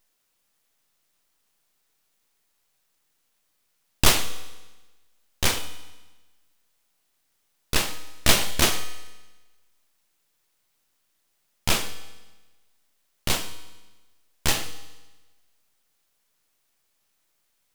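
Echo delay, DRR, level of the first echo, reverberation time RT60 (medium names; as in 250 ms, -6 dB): no echo, 11.5 dB, no echo, 1.2 s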